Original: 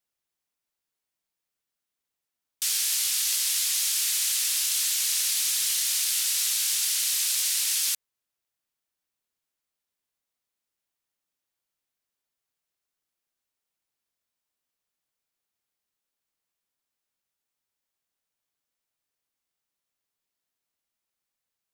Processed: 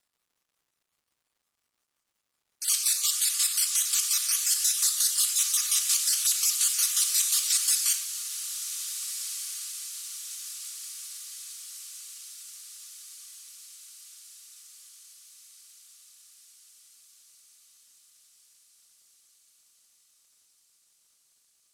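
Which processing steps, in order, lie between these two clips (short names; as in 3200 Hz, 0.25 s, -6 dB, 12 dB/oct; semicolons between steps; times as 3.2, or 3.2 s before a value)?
random spectral dropouts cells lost 32%; LPF 9700 Hz 12 dB/oct; differentiator; in parallel at 0 dB: limiter -28.5 dBFS, peak gain reduction 11.5 dB; on the sum: resonant high-pass 1200 Hz, resonance Q 8.7; chopper 5.6 Hz, depth 60%, duty 40%; on a send: diffused feedback echo 1.599 s, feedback 59%, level -10.5 dB; on the sum: shoebox room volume 3500 m³, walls furnished, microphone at 2.4 m; crackle 410/s -67 dBFS; gain +2.5 dB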